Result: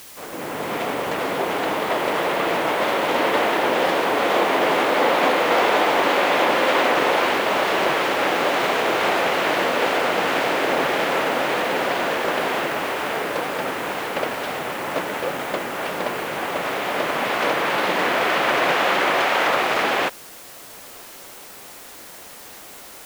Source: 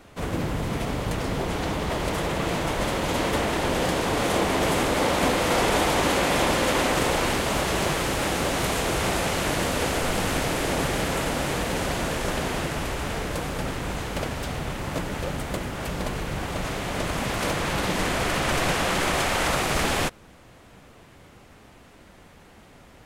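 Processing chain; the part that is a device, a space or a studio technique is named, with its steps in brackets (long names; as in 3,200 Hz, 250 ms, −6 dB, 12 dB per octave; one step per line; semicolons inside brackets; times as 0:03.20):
dictaphone (band-pass filter 390–3,100 Hz; automatic gain control gain up to 11.5 dB; tape wow and flutter; white noise bed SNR 20 dB)
level −3.5 dB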